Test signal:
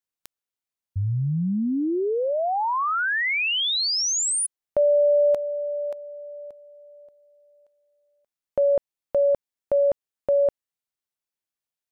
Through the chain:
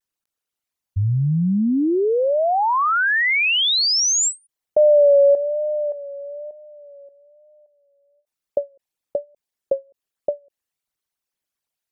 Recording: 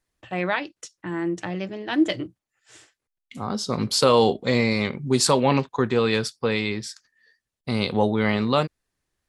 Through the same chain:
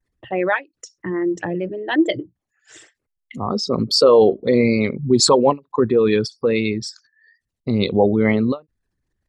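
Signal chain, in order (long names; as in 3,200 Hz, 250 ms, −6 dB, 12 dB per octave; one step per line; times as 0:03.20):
spectral envelope exaggerated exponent 2
pitch vibrato 1.1 Hz 61 cents
every ending faded ahead of time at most 330 dB per second
level +5.5 dB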